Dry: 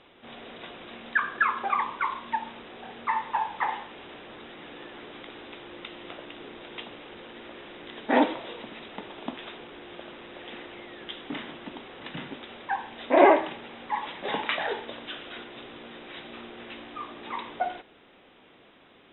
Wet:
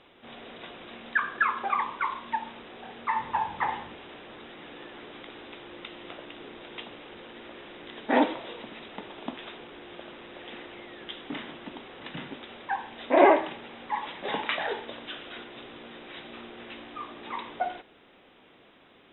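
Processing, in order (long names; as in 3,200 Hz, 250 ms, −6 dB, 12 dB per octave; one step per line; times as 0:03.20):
0:03.16–0:03.96: parametric band 87 Hz +12.5 dB 2.5 octaves
level −1 dB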